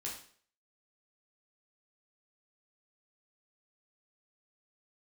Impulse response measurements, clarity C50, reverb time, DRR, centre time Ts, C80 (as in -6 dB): 5.5 dB, 0.50 s, -4.0 dB, 32 ms, 9.5 dB